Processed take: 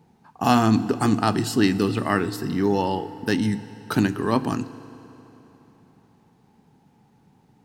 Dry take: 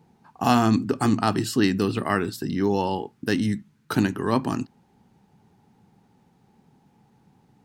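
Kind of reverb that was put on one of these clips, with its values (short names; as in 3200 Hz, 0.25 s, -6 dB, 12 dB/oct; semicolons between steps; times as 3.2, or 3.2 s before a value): FDN reverb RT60 3.7 s, high-frequency decay 0.85×, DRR 14 dB; gain +1 dB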